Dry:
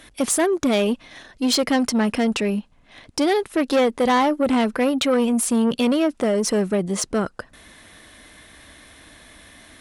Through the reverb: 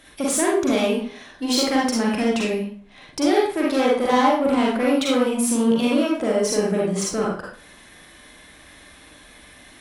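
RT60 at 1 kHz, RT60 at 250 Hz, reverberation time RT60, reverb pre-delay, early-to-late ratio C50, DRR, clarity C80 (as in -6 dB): 0.50 s, 0.50 s, 0.50 s, 37 ms, 0.0 dB, -4.5 dB, 5.5 dB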